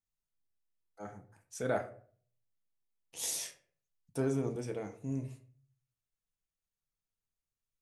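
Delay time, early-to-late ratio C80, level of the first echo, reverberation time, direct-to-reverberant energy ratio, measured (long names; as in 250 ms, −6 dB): no echo audible, 16.5 dB, no echo audible, 0.50 s, 4.5 dB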